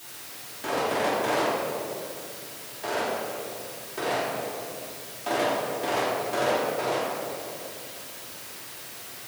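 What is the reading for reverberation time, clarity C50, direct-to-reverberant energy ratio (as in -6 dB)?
2.5 s, -2.0 dB, -9.5 dB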